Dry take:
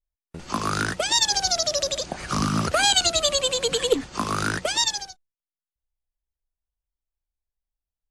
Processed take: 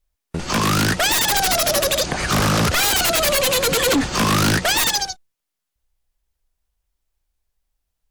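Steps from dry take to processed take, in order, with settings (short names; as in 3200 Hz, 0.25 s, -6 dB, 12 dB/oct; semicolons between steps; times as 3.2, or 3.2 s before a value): sine folder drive 15 dB, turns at -8 dBFS; 3.86–4.56 sample leveller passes 1; gain -6 dB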